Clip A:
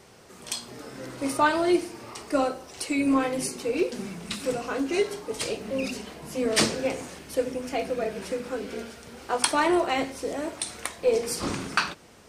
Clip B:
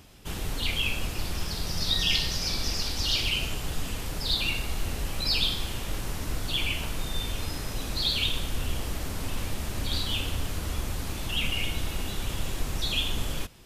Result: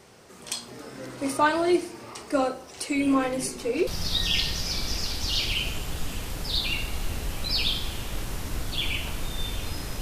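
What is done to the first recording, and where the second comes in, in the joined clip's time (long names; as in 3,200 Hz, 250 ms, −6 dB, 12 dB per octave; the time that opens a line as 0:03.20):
clip A
0:02.95: mix in clip B from 0:00.71 0.92 s −17.5 dB
0:03.87: continue with clip B from 0:01.63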